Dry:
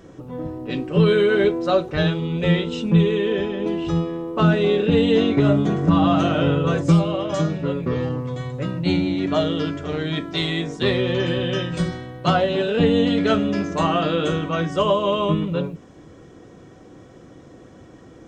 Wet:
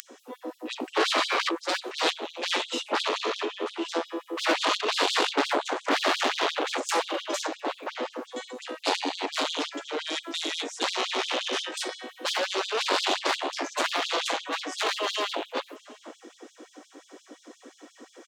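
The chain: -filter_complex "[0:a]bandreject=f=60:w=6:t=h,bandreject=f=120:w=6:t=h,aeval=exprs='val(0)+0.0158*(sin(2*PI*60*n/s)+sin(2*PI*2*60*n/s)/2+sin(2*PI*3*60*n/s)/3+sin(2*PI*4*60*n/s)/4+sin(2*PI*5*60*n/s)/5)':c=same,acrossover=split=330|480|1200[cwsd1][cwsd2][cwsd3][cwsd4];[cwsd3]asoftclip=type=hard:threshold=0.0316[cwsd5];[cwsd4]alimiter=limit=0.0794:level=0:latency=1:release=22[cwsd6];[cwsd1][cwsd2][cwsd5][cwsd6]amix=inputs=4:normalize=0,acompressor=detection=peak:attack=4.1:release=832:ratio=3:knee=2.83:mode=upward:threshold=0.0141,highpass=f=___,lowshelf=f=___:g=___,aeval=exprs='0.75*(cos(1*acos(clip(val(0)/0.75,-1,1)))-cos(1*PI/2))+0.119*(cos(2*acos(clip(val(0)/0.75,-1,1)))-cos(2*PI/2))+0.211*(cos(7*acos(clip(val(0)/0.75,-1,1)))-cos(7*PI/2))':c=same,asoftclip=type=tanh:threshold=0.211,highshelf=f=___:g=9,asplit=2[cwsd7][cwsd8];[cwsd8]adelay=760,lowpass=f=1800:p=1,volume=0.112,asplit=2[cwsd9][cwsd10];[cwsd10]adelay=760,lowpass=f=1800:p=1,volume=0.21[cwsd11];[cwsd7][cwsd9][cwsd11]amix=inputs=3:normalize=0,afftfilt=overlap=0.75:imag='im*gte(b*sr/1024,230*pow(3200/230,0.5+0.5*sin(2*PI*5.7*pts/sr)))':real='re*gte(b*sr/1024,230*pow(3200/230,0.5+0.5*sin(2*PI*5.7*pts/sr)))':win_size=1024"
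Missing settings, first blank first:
82, 260, 4.5, 3400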